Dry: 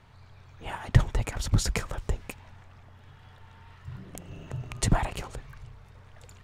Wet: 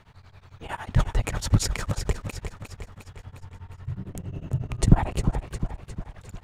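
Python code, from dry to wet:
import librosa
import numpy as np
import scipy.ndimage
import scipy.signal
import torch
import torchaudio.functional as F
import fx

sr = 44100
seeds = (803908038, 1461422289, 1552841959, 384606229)

p1 = fx.tilt_shelf(x, sr, db=6.0, hz=730.0, at=(3.25, 5.41))
p2 = p1 + fx.echo_feedback(p1, sr, ms=355, feedback_pct=52, wet_db=-10, dry=0)
p3 = p2 * np.abs(np.cos(np.pi * 11.0 * np.arange(len(p2)) / sr))
y = p3 * 10.0 ** (5.0 / 20.0)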